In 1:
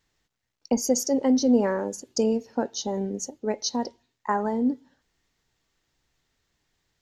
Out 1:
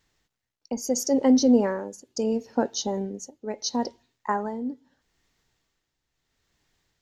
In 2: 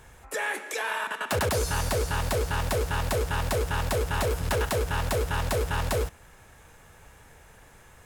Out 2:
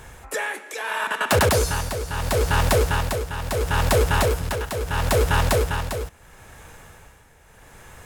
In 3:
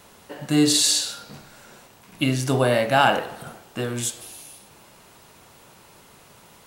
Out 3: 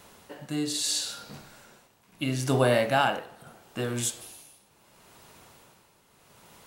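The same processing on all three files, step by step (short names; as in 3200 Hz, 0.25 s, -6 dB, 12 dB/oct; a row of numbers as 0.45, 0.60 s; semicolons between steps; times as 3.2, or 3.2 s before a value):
tremolo 0.75 Hz, depth 69%; normalise peaks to -9 dBFS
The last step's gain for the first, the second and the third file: +2.5, +8.5, -2.5 dB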